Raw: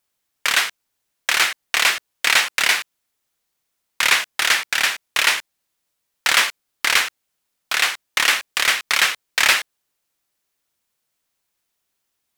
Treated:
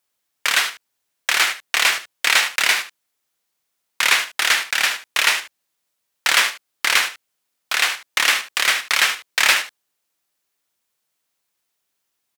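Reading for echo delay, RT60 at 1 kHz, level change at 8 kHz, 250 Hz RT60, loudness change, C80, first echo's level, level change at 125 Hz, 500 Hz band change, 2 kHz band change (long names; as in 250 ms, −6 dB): 74 ms, no reverb audible, +0.5 dB, no reverb audible, 0.0 dB, no reverb audible, −12.0 dB, can't be measured, −0.5 dB, 0.0 dB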